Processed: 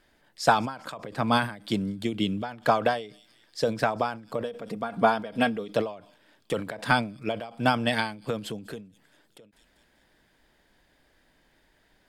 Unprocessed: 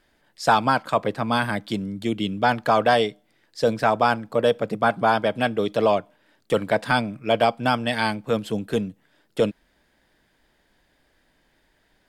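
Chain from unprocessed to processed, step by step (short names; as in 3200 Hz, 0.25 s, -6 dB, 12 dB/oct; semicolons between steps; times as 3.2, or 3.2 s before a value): 4.44–5.74 comb 4.3 ms, depth 46%; thin delay 0.195 s, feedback 52%, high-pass 5100 Hz, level -20 dB; ending taper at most 120 dB/s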